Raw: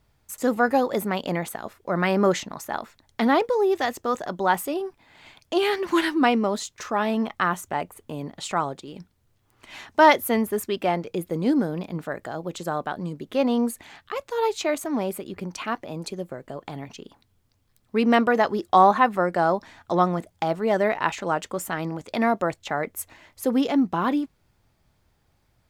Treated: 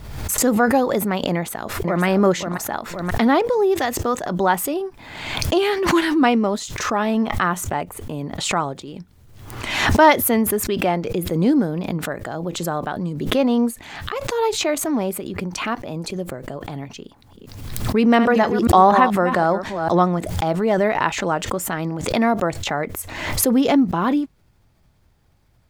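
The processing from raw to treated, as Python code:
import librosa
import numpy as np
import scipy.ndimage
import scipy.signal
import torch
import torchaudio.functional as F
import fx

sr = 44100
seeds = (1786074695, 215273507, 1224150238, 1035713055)

y = fx.echo_throw(x, sr, start_s=1.31, length_s=0.73, ms=530, feedback_pct=20, wet_db=-6.5)
y = fx.reverse_delay(y, sr, ms=242, wet_db=-10, at=(16.98, 20.05))
y = fx.low_shelf(y, sr, hz=250.0, db=5.0)
y = fx.pre_swell(y, sr, db_per_s=49.0)
y = y * 10.0 ** (2.0 / 20.0)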